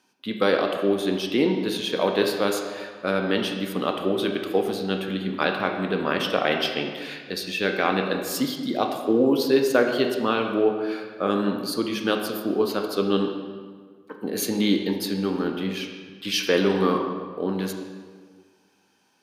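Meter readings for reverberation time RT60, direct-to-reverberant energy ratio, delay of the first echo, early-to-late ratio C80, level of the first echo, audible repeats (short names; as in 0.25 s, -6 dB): 1.6 s, 3.0 dB, none, 6.5 dB, none, none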